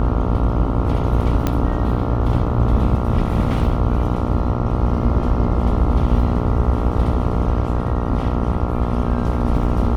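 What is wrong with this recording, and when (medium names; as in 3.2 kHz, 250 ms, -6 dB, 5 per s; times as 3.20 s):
buzz 60 Hz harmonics 23 -22 dBFS
1.47 s: pop -6 dBFS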